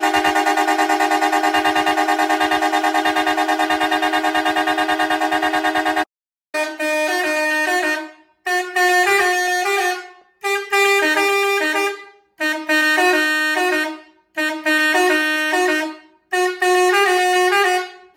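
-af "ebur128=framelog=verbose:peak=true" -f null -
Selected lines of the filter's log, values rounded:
Integrated loudness:
  I:         -17.0 LUFS
  Threshold: -27.2 LUFS
Loudness range:
  LRA:         2.5 LU
  Threshold: -37.5 LUFS
  LRA low:   -18.9 LUFS
  LRA high:  -16.4 LUFS
True peak:
  Peak:       -2.8 dBFS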